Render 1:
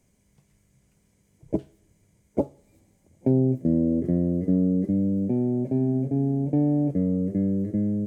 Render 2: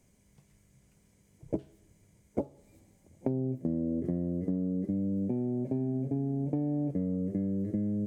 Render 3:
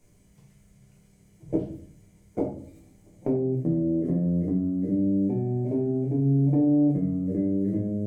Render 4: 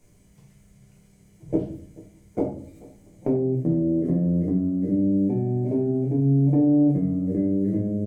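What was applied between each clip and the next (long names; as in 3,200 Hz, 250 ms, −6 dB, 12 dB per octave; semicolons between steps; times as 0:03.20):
downward compressor, threshold −28 dBFS, peak gain reduction 12 dB
rectangular room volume 47 cubic metres, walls mixed, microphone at 0.84 metres
single-tap delay 435 ms −22 dB; level +2.5 dB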